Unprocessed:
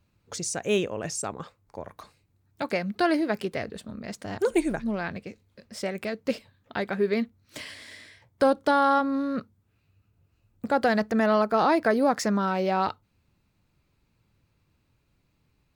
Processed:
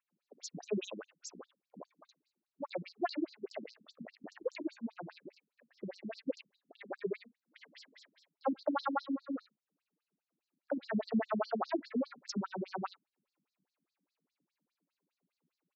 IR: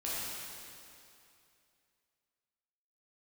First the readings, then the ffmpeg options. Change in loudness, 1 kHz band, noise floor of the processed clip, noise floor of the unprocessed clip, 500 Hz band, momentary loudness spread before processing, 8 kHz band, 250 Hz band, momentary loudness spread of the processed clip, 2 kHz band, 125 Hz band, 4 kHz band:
−13.0 dB, −15.0 dB, below −85 dBFS, −71 dBFS, −14.0 dB, 19 LU, below −15 dB, −11.5 dB, 21 LU, −17.0 dB, −13.0 dB, −12.5 dB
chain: -filter_complex "[0:a]lowpass=7400,acrossover=split=2700[link_01][link_02];[link_02]adelay=100[link_03];[link_01][link_03]amix=inputs=2:normalize=0,afftfilt=real='re*between(b*sr/1024,200*pow(5700/200,0.5+0.5*sin(2*PI*4.9*pts/sr))/1.41,200*pow(5700/200,0.5+0.5*sin(2*PI*4.9*pts/sr))*1.41)':imag='im*between(b*sr/1024,200*pow(5700/200,0.5+0.5*sin(2*PI*4.9*pts/sr))/1.41,200*pow(5700/200,0.5+0.5*sin(2*PI*4.9*pts/sr))*1.41)':win_size=1024:overlap=0.75,volume=-4.5dB"

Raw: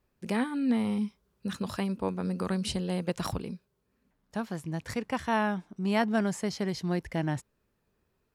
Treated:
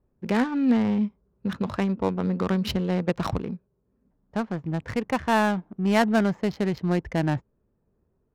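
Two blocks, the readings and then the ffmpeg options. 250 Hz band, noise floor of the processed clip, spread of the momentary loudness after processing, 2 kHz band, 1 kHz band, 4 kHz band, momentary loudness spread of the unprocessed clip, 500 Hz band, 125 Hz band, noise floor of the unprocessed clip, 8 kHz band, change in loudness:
+6.0 dB, −72 dBFS, 10 LU, +5.5 dB, +5.5 dB, +3.0 dB, 10 LU, +6.0 dB, +6.0 dB, −76 dBFS, −1.5 dB, +5.5 dB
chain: -af "aresample=16000,aresample=44100,adynamicsmooth=sensitivity=8:basefreq=790,volume=6dB"

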